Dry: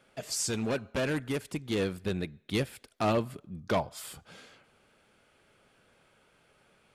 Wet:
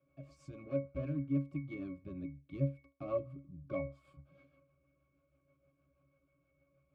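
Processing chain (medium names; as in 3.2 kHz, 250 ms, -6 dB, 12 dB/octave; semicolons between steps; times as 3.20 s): rotary cabinet horn 6.3 Hz; pitch-class resonator C#, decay 0.25 s; trim +6.5 dB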